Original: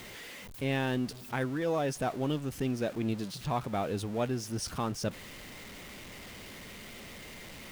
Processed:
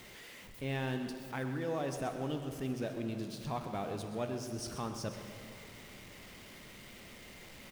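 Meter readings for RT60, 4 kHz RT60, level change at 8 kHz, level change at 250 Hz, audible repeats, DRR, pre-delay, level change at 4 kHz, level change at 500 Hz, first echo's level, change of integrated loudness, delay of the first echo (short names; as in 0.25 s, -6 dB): 2.6 s, 1.8 s, -5.5 dB, -5.5 dB, 1, 6.0 dB, 25 ms, -5.5 dB, -5.0 dB, -13.0 dB, -5.5 dB, 0.128 s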